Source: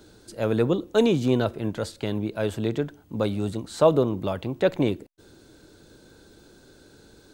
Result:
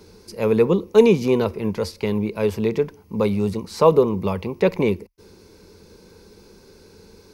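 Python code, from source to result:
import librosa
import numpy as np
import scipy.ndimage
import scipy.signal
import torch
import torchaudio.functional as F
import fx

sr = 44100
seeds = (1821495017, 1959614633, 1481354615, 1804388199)

y = fx.ripple_eq(x, sr, per_octave=0.84, db=11)
y = F.gain(torch.from_numpy(y), 3.0).numpy()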